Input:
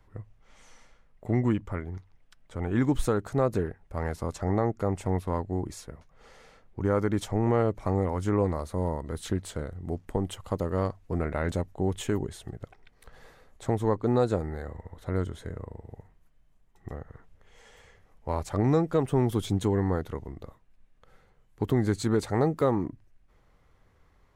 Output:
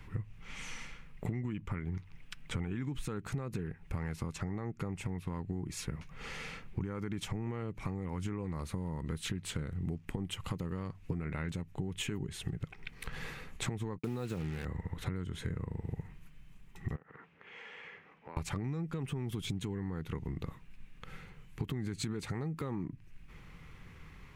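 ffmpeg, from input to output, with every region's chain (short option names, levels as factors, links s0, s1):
-filter_complex "[0:a]asettb=1/sr,asplit=3[s0][s1][s2];[s0]atrim=end=13.984[s3];[s1]atrim=start=13.98:end=14.65,asetpts=PTS-STARTPTS,afade=t=in:d=0.004:c=qsin,afade=t=out:st=0.666:d=0.004:c=qsin,agate=range=0.0224:threshold=0.0141:ratio=3:release=100:detection=peak,highpass=70,acrusher=bits=6:mix=0:aa=0.5[s4];[s2]atrim=start=14.646[s5];[s3][s4]acrossfade=d=0.004:c1=hsin:c2=qsin[s6];[s6][s5]acrossfade=d=0.004:c1=qsin:c2=hsin,asettb=1/sr,asplit=3[s7][s8][s9];[s7]atrim=end=16.964[s10];[s8]atrim=start=16.96:end=18.37,asetpts=PTS-STARTPTS,afade=t=in:d=0.004:c=qsin,afade=t=out:st=1.406:d=0.004:c=qsin,highpass=330,lowpass=2300,acompressor=threshold=0.00141:ratio=3:attack=3.2:release=140:knee=1:detection=peak[s11];[s9]atrim=start=18.366[s12];[s10][s11]acrossfade=d=0.004:c1=hsin:c2=qsin[s13];[s13][s12]acrossfade=d=0.004:c1=qsin:c2=hsin,equalizer=f=160:t=o:w=0.67:g=9,equalizer=f=630:t=o:w=0.67:g=-10,equalizer=f=2500:t=o:w=0.67:g=10,alimiter=limit=0.0891:level=0:latency=1:release=126,acompressor=threshold=0.00794:ratio=16,volume=2.82"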